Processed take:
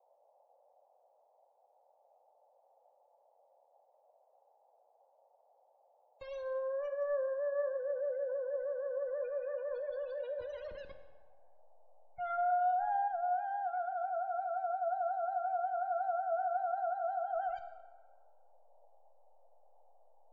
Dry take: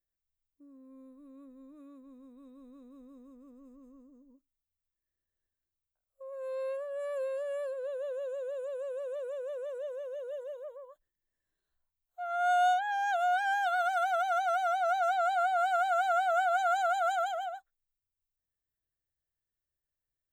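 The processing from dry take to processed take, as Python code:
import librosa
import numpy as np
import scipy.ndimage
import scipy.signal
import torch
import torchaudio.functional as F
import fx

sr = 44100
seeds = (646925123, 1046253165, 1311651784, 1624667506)

y = fx.delta_hold(x, sr, step_db=-42.0)
y = fx.spec_gate(y, sr, threshold_db=-25, keep='strong')
y = fx.dmg_noise_band(y, sr, seeds[0], low_hz=510.0, high_hz=860.0, level_db=-70.0)
y = fx.env_lowpass_down(y, sr, base_hz=550.0, full_db=-28.0)
y = fx.rev_plate(y, sr, seeds[1], rt60_s=1.4, hf_ratio=0.65, predelay_ms=0, drr_db=7.5)
y = fx.env_flatten(y, sr, amount_pct=50, at=(12.38, 13.08))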